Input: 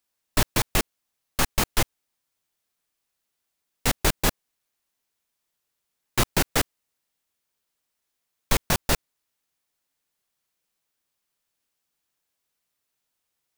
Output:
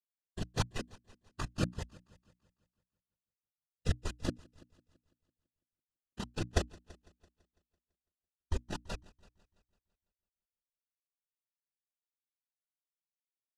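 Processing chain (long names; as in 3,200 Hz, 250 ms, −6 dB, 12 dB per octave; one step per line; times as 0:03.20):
rotating-speaker cabinet horn 7.5 Hz
noise gate −22 dBFS, range −32 dB
high-shelf EQ 6,000 Hz +10 dB
brickwall limiter −11 dBFS, peak gain reduction 4.5 dB
compressor whose output falls as the input rises −34 dBFS, ratio −1
random phases in short frames
Butterworth band-reject 2,200 Hz, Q 6.4
high-frequency loss of the air 80 metres
mains-hum notches 60/120/180/240/300 Hz
echo machine with several playback heads 167 ms, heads first and second, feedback 52%, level −18.5 dB
every bin expanded away from the loudest bin 1.5 to 1
level +6 dB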